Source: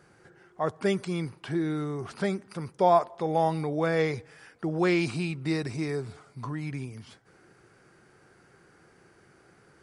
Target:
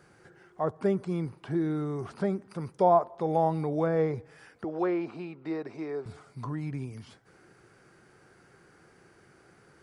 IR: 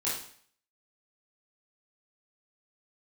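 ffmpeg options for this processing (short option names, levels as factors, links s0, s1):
-filter_complex "[0:a]acrossover=split=1300[s0][s1];[s1]acompressor=threshold=0.00224:ratio=6[s2];[s0][s2]amix=inputs=2:normalize=0,asettb=1/sr,asplit=3[s3][s4][s5];[s3]atrim=end=4.644[s6];[s4]atrim=start=4.64:end=6.06,asetpts=PTS-STARTPTS,afade=t=in:d=0.004:c=qsin,afade=t=out:st=1.416:d=0.004:c=qsin,highpass=360,lowpass=4100[s7];[s5]atrim=start=6.056[s8];[s6][s7]acrossfade=d=0.004:c1=hsin:c2=qsin[s9];[s9][s8]acrossfade=d=0.004:c1=qsin:c2=hsin"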